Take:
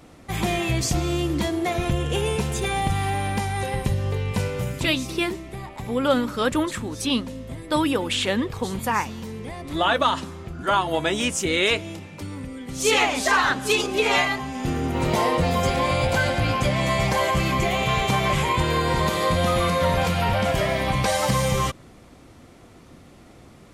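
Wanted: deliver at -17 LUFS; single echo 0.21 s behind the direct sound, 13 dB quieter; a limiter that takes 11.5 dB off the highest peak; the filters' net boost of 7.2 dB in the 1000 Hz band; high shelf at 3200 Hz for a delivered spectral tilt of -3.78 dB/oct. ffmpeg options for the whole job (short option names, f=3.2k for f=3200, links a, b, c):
-af "equalizer=f=1k:t=o:g=8,highshelf=f=3.2k:g=6,alimiter=limit=-12.5dB:level=0:latency=1,aecho=1:1:210:0.224,volume=5dB"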